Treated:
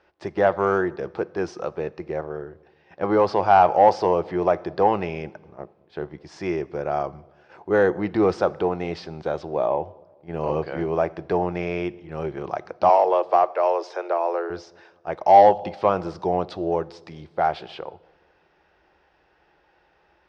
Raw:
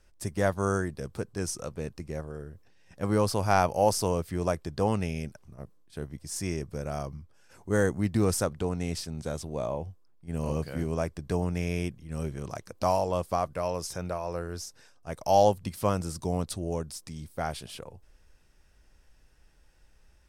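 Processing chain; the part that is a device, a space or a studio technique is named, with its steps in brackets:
0:12.89–0:14.50: Butterworth high-pass 310 Hz 96 dB per octave
delay with a low-pass on its return 210 ms, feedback 44%, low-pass 450 Hz, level −22 dB
coupled-rooms reverb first 0.79 s, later 2.1 s, DRR 19 dB
overdrive pedal into a guitar cabinet (mid-hump overdrive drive 15 dB, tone 1,100 Hz, clips at −8 dBFS; loudspeaker in its box 90–4,600 Hz, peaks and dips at 120 Hz −9 dB, 240 Hz −9 dB, 350 Hz +6 dB, 800 Hz +6 dB)
level +3.5 dB

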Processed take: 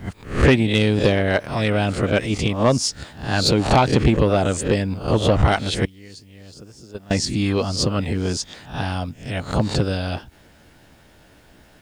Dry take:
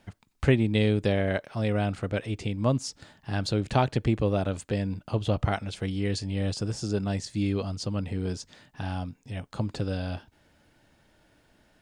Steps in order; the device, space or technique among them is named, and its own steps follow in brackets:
peak hold with a rise ahead of every peak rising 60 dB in 0.43 s
0:05.85–0:07.11: noise gate −21 dBFS, range −22 dB
harmonic and percussive parts rebalanced percussive +9 dB
open-reel tape (soft clipping −11.5 dBFS, distortion −15 dB; parametric band 66 Hz +3 dB; white noise bed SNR 47 dB)
level +4.5 dB

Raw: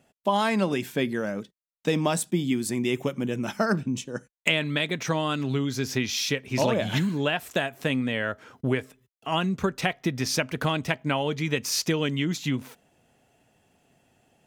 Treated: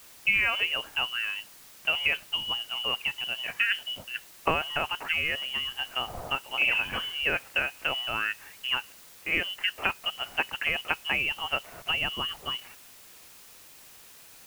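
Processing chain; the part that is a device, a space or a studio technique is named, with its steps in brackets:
scrambled radio voice (band-pass filter 360–3,100 Hz; voice inversion scrambler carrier 3,200 Hz; white noise bed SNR 20 dB)

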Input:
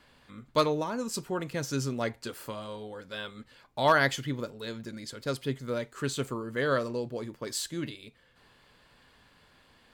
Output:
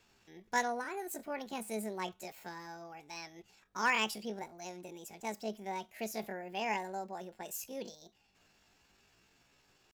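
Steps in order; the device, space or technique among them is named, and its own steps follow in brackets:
chipmunk voice (pitch shifter +8 semitones)
level −7.5 dB

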